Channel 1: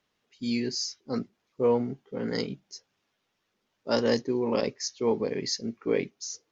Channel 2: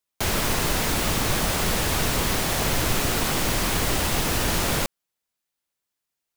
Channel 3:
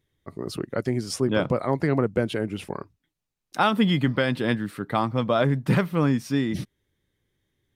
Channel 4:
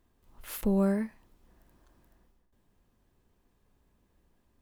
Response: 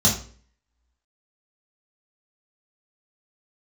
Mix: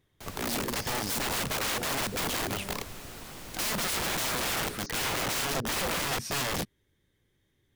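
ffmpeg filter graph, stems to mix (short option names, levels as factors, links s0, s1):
-filter_complex "[0:a]lowpass=f=1000:p=1,bandreject=f=60:t=h:w=6,bandreject=f=120:t=h:w=6,bandreject=f=180:t=h:w=6,bandreject=f=240:t=h:w=6,bandreject=f=300:t=h:w=6,bandreject=f=360:t=h:w=6,bandreject=f=420:t=h:w=6,acontrast=61,volume=0.473[s0];[1:a]volume=0.1[s1];[2:a]asoftclip=type=tanh:threshold=0.237,volume=1.26[s2];[3:a]adelay=1750,volume=0.106[s3];[s0][s1][s2][s3]amix=inputs=4:normalize=0,aeval=exprs='(mod(18.8*val(0)+1,2)-1)/18.8':c=same"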